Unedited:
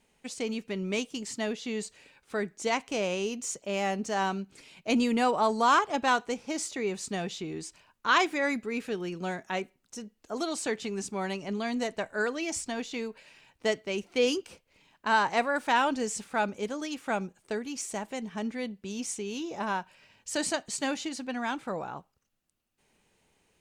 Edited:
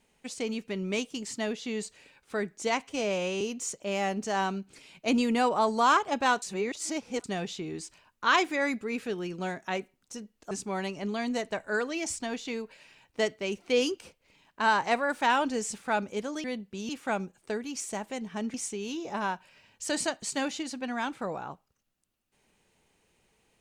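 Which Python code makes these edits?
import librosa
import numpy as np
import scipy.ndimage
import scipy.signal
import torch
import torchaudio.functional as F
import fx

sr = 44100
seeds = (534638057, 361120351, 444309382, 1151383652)

y = fx.edit(x, sr, fx.stretch_span(start_s=2.87, length_s=0.36, factor=1.5),
    fx.reverse_span(start_s=6.24, length_s=0.82),
    fx.cut(start_s=10.33, length_s=0.64),
    fx.move(start_s=18.55, length_s=0.45, to_s=16.9), tone=tone)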